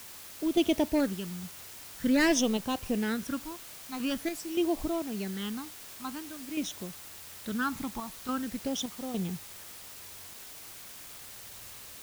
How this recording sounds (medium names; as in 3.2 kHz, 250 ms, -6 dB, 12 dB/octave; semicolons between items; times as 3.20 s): phasing stages 12, 0.47 Hz, lowest notch 490–1700 Hz; random-step tremolo, depth 75%; a quantiser's noise floor 8-bit, dither triangular